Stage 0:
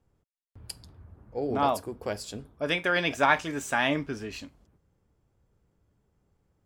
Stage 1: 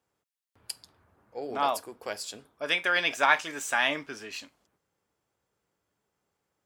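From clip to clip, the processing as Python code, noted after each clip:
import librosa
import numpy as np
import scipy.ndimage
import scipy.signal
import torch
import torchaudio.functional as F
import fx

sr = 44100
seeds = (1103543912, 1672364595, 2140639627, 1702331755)

y = fx.highpass(x, sr, hz=1100.0, slope=6)
y = F.gain(torch.from_numpy(y), 3.0).numpy()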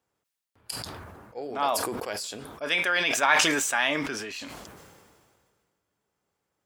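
y = fx.sustainer(x, sr, db_per_s=30.0)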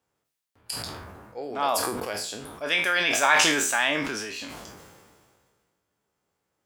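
y = fx.spec_trails(x, sr, decay_s=0.4)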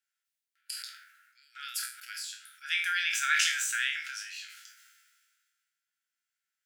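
y = fx.brickwall_highpass(x, sr, low_hz=1300.0)
y = F.gain(torch.from_numpy(y), -5.5).numpy()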